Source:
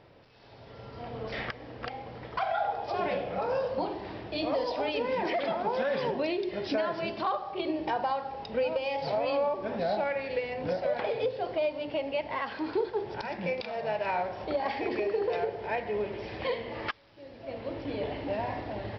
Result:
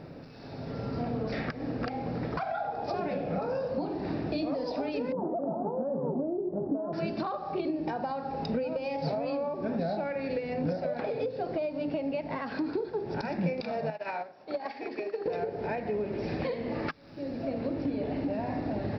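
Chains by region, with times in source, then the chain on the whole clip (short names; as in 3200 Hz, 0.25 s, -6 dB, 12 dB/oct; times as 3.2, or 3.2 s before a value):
5.12–6.93 steep low-pass 1000 Hz + bell 77 Hz -12.5 dB 0.52 oct + Doppler distortion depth 0.12 ms
13.9–15.26 HPF 790 Hz 6 dB/oct + upward expander 2.5:1, over -43 dBFS
whole clip: bell 260 Hz +10 dB 0.53 oct; compressor 6:1, threshold -38 dBFS; thirty-one-band EQ 160 Hz +11 dB, 1000 Hz -6 dB, 2000 Hz -5 dB, 3150 Hz -12 dB; gain +8.5 dB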